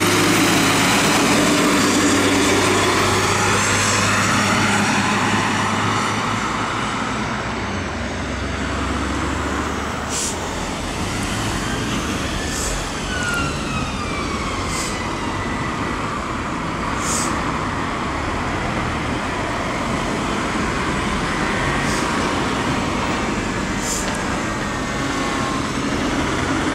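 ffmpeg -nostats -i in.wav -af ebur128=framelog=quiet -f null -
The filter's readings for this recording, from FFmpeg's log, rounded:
Integrated loudness:
  I:         -19.5 LUFS
  Threshold: -29.4 LUFS
Loudness range:
  LRA:         7.2 LU
  Threshold: -39.9 LUFS
  LRA low:   -22.6 LUFS
  LRA high:  -15.4 LUFS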